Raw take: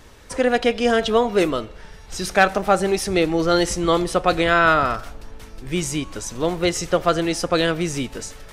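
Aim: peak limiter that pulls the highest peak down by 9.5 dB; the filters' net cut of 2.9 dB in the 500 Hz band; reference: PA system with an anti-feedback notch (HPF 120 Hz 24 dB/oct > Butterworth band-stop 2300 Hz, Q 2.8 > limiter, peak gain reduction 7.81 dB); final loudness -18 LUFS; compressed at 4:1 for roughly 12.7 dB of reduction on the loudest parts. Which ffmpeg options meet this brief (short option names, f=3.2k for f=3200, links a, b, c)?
-af "equalizer=f=500:t=o:g=-3.5,acompressor=threshold=-28dB:ratio=4,alimiter=level_in=1dB:limit=-24dB:level=0:latency=1,volume=-1dB,highpass=f=120:w=0.5412,highpass=f=120:w=1.3066,asuperstop=centerf=2300:order=8:qfactor=2.8,volume=21dB,alimiter=limit=-8.5dB:level=0:latency=1"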